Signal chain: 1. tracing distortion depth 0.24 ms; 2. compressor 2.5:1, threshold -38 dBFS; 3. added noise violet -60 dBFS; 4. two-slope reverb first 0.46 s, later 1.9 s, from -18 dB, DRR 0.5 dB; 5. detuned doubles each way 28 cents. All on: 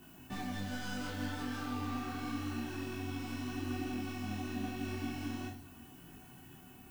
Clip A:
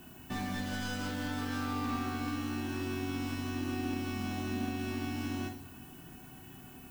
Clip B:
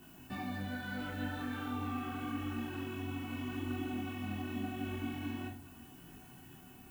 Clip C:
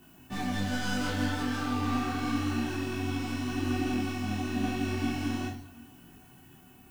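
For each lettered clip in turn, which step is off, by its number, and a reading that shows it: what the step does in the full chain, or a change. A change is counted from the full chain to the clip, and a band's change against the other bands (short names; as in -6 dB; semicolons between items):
5, loudness change +3.5 LU; 1, 8 kHz band -6.5 dB; 2, mean gain reduction 6.0 dB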